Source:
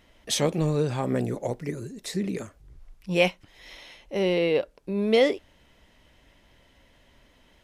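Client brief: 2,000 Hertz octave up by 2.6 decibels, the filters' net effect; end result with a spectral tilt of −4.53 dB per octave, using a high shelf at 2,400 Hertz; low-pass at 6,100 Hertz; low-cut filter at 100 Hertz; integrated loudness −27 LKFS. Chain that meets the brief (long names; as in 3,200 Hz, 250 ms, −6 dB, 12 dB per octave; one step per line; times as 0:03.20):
high-pass filter 100 Hz
low-pass filter 6,100 Hz
parametric band 2,000 Hz +5 dB
high-shelf EQ 2,400 Hz −3.5 dB
level −0.5 dB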